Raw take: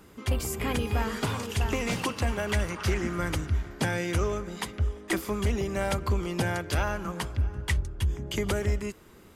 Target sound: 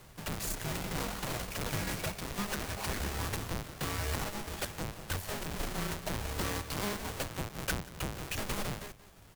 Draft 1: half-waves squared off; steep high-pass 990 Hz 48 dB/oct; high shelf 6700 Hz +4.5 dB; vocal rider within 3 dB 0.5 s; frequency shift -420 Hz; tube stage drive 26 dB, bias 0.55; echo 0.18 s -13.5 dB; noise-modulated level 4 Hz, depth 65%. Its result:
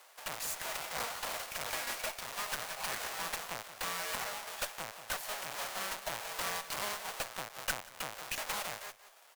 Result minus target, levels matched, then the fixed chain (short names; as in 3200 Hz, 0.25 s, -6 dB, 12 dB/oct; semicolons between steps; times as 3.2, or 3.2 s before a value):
250 Hz band -14.0 dB
half-waves squared off; steep high-pass 250 Hz 48 dB/oct; high shelf 6700 Hz +4.5 dB; vocal rider within 3 dB 0.5 s; frequency shift -420 Hz; tube stage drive 26 dB, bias 0.55; echo 0.18 s -13.5 dB; noise-modulated level 4 Hz, depth 65%